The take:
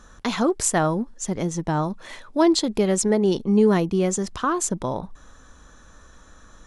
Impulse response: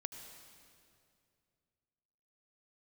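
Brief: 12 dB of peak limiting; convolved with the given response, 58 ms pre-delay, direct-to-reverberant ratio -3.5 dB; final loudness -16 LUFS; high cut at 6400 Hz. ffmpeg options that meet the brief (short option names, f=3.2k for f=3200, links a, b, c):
-filter_complex "[0:a]lowpass=6.4k,alimiter=limit=-20dB:level=0:latency=1,asplit=2[a][b];[1:a]atrim=start_sample=2205,adelay=58[c];[b][c]afir=irnorm=-1:irlink=0,volume=6dB[d];[a][d]amix=inputs=2:normalize=0,volume=7.5dB"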